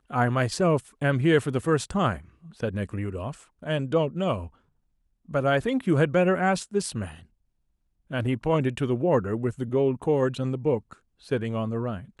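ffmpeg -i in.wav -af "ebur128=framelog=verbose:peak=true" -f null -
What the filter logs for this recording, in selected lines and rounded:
Integrated loudness:
  I:         -25.9 LUFS
  Threshold: -36.4 LUFS
Loudness range:
  LRA:         3.3 LU
  Threshold: -46.9 LUFS
  LRA low:   -29.0 LUFS
  LRA high:  -25.7 LUFS
True peak:
  Peak:       -9.2 dBFS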